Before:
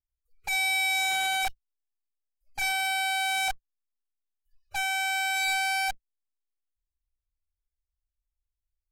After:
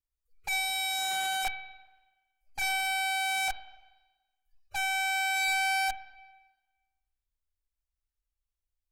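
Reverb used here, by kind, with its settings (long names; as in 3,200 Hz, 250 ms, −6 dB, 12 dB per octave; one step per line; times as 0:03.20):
spring reverb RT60 1.2 s, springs 40/47/57 ms, chirp 65 ms, DRR 12.5 dB
level −2 dB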